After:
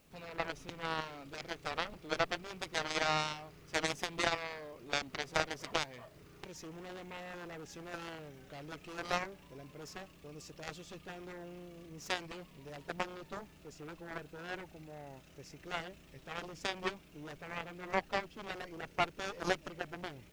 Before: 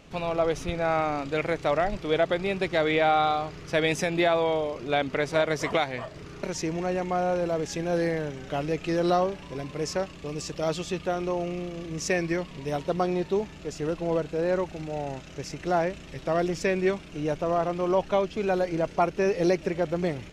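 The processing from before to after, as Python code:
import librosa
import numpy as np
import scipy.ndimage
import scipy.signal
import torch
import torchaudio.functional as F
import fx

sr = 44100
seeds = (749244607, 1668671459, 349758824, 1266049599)

y = fx.cheby_harmonics(x, sr, harmonics=(2, 3, 7), levels_db=(-16, -8, -44), full_scale_db=-12.5)
y = fx.dmg_noise_colour(y, sr, seeds[0], colour='white', level_db=-70.0)
y = F.gain(torch.from_numpy(y), -2.5).numpy()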